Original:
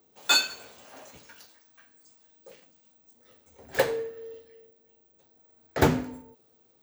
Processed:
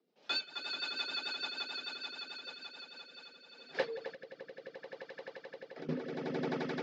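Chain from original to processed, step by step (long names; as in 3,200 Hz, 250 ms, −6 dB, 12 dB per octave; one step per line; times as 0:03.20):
Chebyshev band-pass filter 160–5,200 Hz, order 4
echo that builds up and dies away 87 ms, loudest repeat 8, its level −6.5 dB
0:04.10–0:05.89: downward compressor 5 to 1, threshold −33 dBFS, peak gain reduction 15 dB
reverb reduction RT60 0.74 s
rotating-speaker cabinet horn 6.7 Hz, later 0.65 Hz, at 0:02.70
level −8 dB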